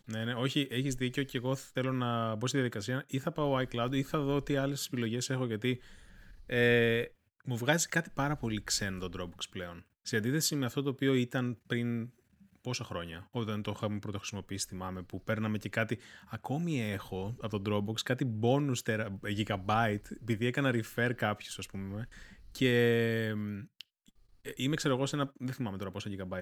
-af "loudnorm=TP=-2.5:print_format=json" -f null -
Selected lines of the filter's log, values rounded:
"input_i" : "-33.4",
"input_tp" : "-11.5",
"input_lra" : "5.1",
"input_thresh" : "-43.9",